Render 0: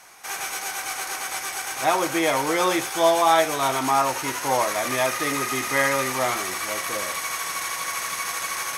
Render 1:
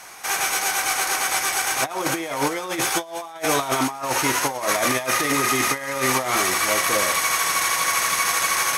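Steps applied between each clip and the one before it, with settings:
compressor whose output falls as the input rises −26 dBFS, ratio −0.5
level +4.5 dB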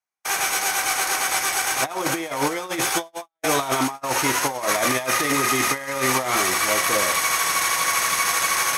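noise gate −29 dBFS, range −50 dB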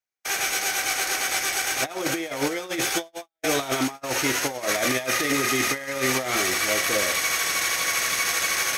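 graphic EQ with 15 bands 160 Hz −4 dB, 1,000 Hz −11 dB, 10,000 Hz −6 dB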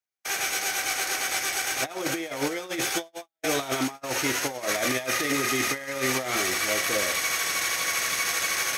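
high-pass filter 45 Hz
level −2.5 dB

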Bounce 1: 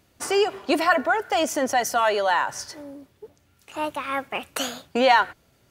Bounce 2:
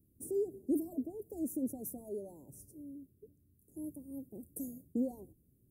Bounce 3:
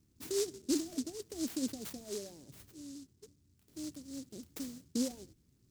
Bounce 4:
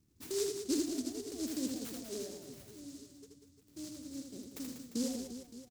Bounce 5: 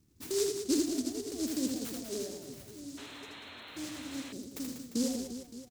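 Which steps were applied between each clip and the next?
inverse Chebyshev band-stop filter 1,300–3,300 Hz, stop band 80 dB; level −5.5 dB
short delay modulated by noise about 5,900 Hz, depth 0.17 ms
reverse bouncing-ball delay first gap 80 ms, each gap 1.4×, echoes 5; level −2 dB
sound drawn into the spectrogram noise, 0:02.97–0:04.33, 210–4,300 Hz −53 dBFS; level +4 dB

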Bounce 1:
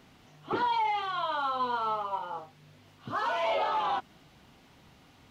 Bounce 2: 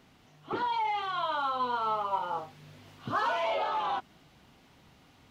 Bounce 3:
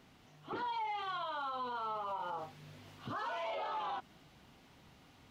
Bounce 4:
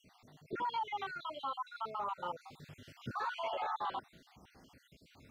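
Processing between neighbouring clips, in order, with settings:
speech leveller 0.5 s
brickwall limiter −30.5 dBFS, peak gain reduction 11 dB; level −2 dB
time-frequency cells dropped at random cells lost 52%; level +3 dB

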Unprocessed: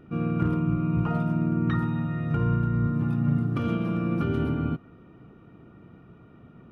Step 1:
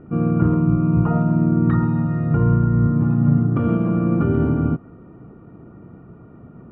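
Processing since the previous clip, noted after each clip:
low-pass filter 1,200 Hz 12 dB per octave
level +8 dB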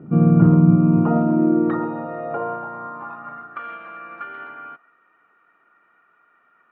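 dynamic equaliser 680 Hz, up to +5 dB, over −38 dBFS, Q 1.5
high-pass filter sweep 160 Hz → 1,700 Hz, 0:00.56–0:03.71
level −1 dB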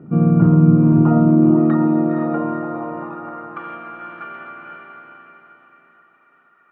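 feedback delay with all-pass diffusion 488 ms, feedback 44%, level −4 dB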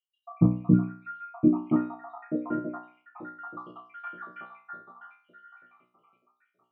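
time-frequency cells dropped at random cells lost 78%
tuned comb filter 61 Hz, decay 0.45 s, harmonics all, mix 90%
level +4 dB

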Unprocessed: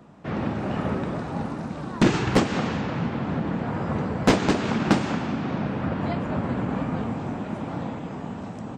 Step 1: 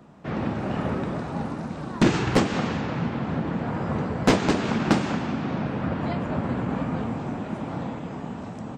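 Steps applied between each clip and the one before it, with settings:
hum removal 98.41 Hz, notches 38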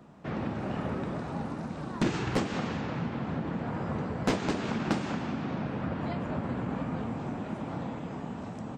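downward compressor 1.5 to 1, threshold −31 dBFS, peak gain reduction 6 dB
level −3 dB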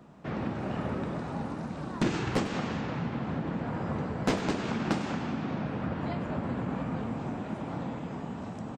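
single-tap delay 99 ms −14 dB

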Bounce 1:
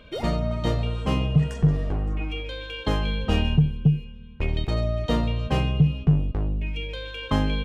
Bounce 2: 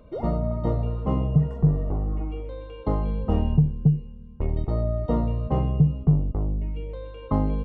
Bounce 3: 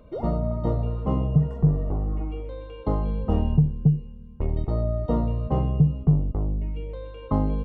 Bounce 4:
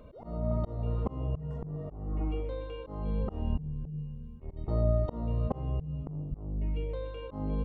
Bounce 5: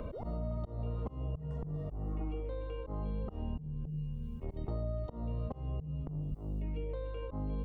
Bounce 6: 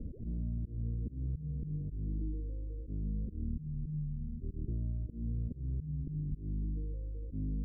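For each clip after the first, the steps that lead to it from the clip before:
Savitzky-Golay smoothing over 65 samples
dynamic equaliser 2,100 Hz, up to −4 dB, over −52 dBFS, Q 2.3
hum removal 48.91 Hz, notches 5; volume swells 382 ms
multiband upward and downward compressor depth 100%; level −6 dB
inverse Chebyshev low-pass filter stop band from 850 Hz, stop band 50 dB; level +1 dB

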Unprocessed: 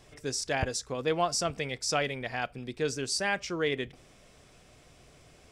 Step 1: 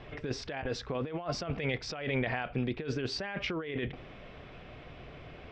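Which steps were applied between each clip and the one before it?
low-pass filter 3,200 Hz 24 dB per octave
compressor whose output falls as the input rises −38 dBFS, ratio −1
level +3.5 dB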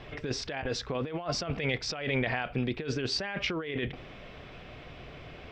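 high-shelf EQ 3,600 Hz +7 dB
level +1.5 dB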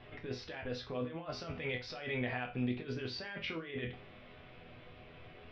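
low-pass filter 4,400 Hz 24 dB per octave
resonators tuned to a chord E2 major, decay 0.3 s
level +4 dB

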